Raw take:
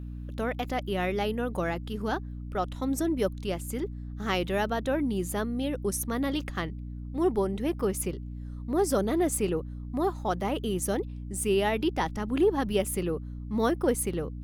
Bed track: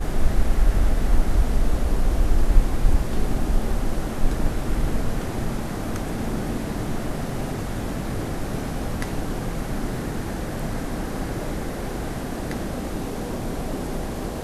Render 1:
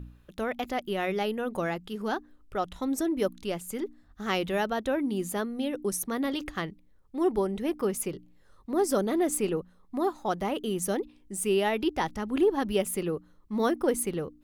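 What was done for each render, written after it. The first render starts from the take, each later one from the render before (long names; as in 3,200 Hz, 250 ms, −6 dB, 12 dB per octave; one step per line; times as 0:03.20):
hum removal 60 Hz, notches 5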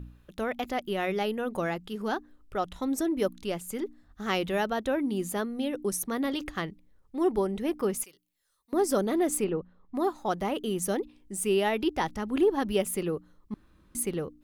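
0:08.04–0:08.73: first-order pre-emphasis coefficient 0.97
0:09.44–0:09.95: high-frequency loss of the air 300 metres
0:13.54–0:13.95: fill with room tone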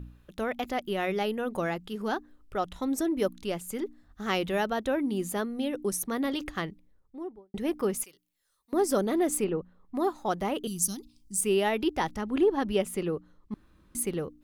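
0:06.65–0:07.54: fade out and dull
0:10.67–0:11.41: drawn EQ curve 160 Hz 0 dB, 270 Hz −6 dB, 530 Hz −28 dB, 820 Hz −16 dB, 1,200 Hz −12 dB, 1,700 Hz −20 dB, 3,300 Hz −6 dB, 4,800 Hz +9 dB, 15,000 Hz +5 dB
0:12.21–0:13.52: high-shelf EQ 8,800 Hz −10.5 dB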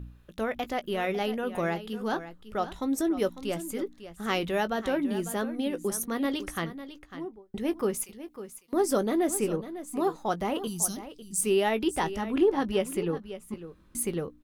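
double-tracking delay 18 ms −13 dB
single-tap delay 550 ms −13 dB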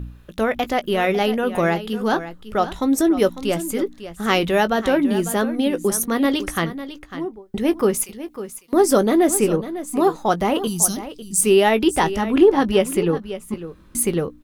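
level +10 dB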